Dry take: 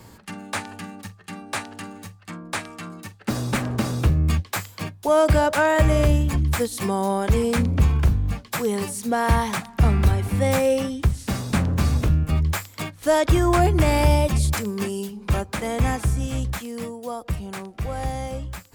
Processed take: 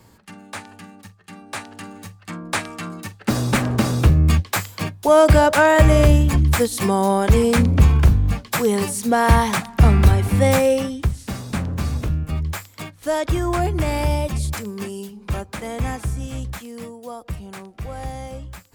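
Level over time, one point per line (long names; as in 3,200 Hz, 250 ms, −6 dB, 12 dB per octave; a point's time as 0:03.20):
0:01.20 −5 dB
0:02.49 +5 dB
0:10.46 +5 dB
0:11.33 −3 dB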